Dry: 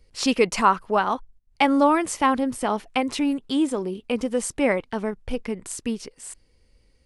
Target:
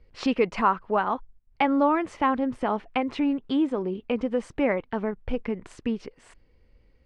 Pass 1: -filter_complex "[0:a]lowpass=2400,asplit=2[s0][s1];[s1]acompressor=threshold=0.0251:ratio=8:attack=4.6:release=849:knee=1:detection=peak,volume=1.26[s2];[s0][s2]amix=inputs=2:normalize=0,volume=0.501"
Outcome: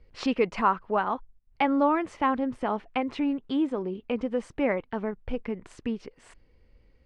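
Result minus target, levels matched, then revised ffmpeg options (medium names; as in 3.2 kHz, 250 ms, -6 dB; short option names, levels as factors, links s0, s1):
compression: peak gain reduction +8 dB
-filter_complex "[0:a]lowpass=2400,asplit=2[s0][s1];[s1]acompressor=threshold=0.0708:ratio=8:attack=4.6:release=849:knee=1:detection=peak,volume=1.26[s2];[s0][s2]amix=inputs=2:normalize=0,volume=0.501"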